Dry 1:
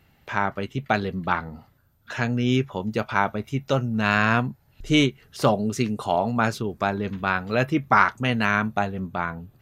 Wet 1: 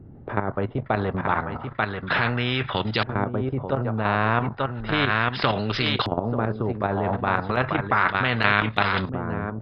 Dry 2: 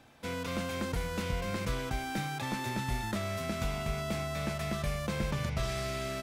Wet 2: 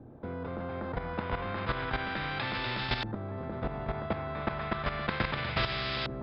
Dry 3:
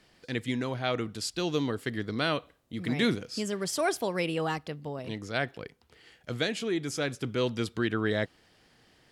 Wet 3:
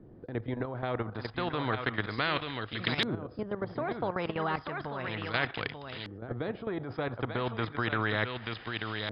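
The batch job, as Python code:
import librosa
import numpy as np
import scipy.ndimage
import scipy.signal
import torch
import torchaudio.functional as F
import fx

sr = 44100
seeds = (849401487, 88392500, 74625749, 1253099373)

p1 = scipy.signal.sosfilt(scipy.signal.cheby1(6, 6, 5100.0, 'lowpass', fs=sr, output='sos'), x)
p2 = p1 + fx.echo_single(p1, sr, ms=889, db=-10.5, dry=0)
p3 = fx.level_steps(p2, sr, step_db=12)
p4 = fx.high_shelf(p3, sr, hz=3600.0, db=3.0)
p5 = fx.filter_lfo_lowpass(p4, sr, shape='saw_up', hz=0.33, low_hz=320.0, high_hz=3700.0, q=1.6)
p6 = fx.peak_eq(p5, sr, hz=110.0, db=10.0, octaves=0.57)
p7 = fx.over_compress(p6, sr, threshold_db=-31.0, ratio=-0.5)
p8 = p6 + F.gain(torch.from_numpy(p7), -2.0).numpy()
p9 = fx.spectral_comp(p8, sr, ratio=2.0)
y = F.gain(torch.from_numpy(p9), 4.0).numpy()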